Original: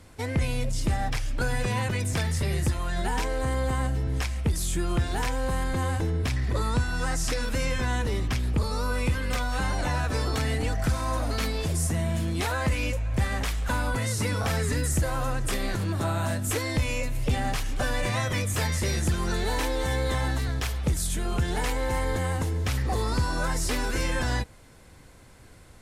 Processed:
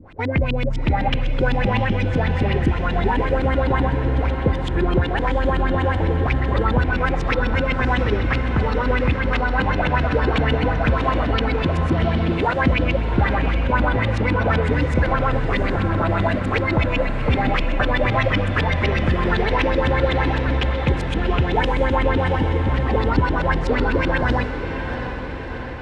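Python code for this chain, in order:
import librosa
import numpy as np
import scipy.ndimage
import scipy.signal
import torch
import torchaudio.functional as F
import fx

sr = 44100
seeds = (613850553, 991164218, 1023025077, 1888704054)

y = fx.filter_lfo_lowpass(x, sr, shape='saw_up', hz=7.9, low_hz=220.0, high_hz=3500.0, q=3.9)
y = fx.echo_diffused(y, sr, ms=732, feedback_pct=63, wet_db=-8)
y = F.gain(torch.from_numpy(y), 5.0).numpy()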